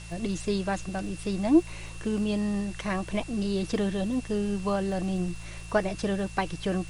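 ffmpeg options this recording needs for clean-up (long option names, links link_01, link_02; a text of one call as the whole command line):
ffmpeg -i in.wav -af "adeclick=threshold=4,bandreject=frequency=55.9:width_type=h:width=4,bandreject=frequency=111.8:width_type=h:width=4,bandreject=frequency=167.7:width_type=h:width=4,bandreject=frequency=2700:width=30,afwtdn=0.004" out.wav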